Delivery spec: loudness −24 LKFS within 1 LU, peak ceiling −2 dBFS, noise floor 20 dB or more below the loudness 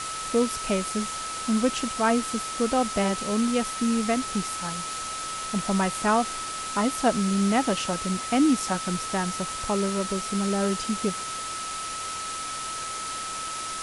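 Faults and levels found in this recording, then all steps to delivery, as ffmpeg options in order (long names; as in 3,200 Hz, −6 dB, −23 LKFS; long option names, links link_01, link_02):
interfering tone 1,300 Hz; level of the tone −33 dBFS; background noise floor −33 dBFS; target noise floor −47 dBFS; integrated loudness −26.5 LKFS; sample peak −7.0 dBFS; target loudness −24.0 LKFS
→ -af "bandreject=frequency=1300:width=30"
-af "afftdn=noise_reduction=14:noise_floor=-33"
-af "volume=2.5dB"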